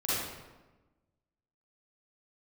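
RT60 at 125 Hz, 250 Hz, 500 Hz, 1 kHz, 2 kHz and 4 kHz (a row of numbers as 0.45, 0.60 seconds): 1.4, 1.5, 1.2, 1.1, 0.95, 0.75 seconds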